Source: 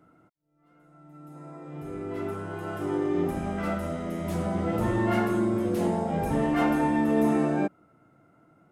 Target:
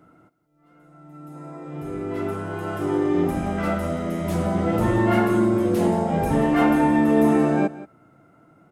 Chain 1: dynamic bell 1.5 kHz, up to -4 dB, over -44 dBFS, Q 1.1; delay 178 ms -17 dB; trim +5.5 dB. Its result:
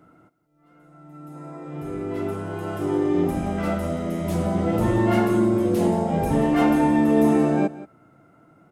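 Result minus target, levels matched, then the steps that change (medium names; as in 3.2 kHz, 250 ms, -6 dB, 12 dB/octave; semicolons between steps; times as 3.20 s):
2 kHz band -2.5 dB
change: dynamic bell 5.7 kHz, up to -4 dB, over -44 dBFS, Q 1.1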